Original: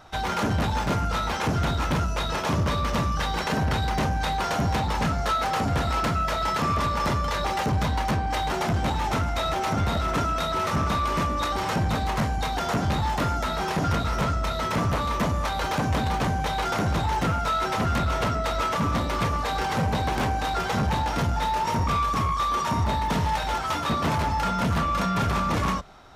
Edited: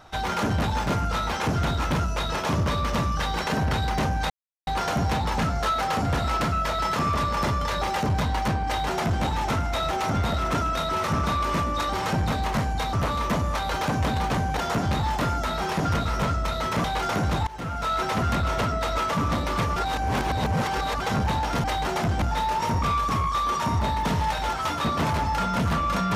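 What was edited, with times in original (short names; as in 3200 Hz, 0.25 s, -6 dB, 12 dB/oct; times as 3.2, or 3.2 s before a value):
4.3 insert silence 0.37 s
8.29–8.87 copy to 21.27
14.83–16.47 move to 12.56
17.1–17.59 fade in, from -20.5 dB
19.39–20.63 reverse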